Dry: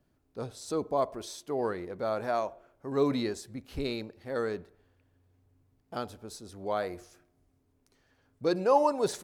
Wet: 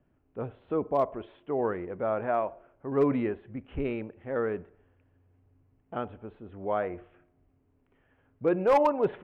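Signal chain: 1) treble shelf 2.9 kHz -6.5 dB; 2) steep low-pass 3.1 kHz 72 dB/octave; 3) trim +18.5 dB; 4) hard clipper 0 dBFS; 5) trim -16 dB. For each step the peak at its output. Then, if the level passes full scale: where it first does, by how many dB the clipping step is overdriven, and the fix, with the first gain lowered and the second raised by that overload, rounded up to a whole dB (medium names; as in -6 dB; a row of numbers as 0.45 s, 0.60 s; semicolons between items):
-12.5 dBFS, -12.5 dBFS, +6.0 dBFS, 0.0 dBFS, -16.0 dBFS; step 3, 6.0 dB; step 3 +12.5 dB, step 5 -10 dB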